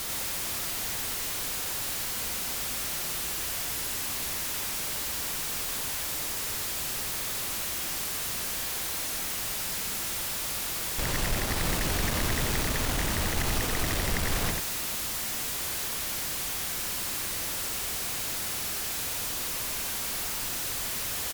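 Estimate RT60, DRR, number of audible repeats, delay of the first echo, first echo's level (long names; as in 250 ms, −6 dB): no reverb audible, no reverb audible, 1, 90 ms, −3.0 dB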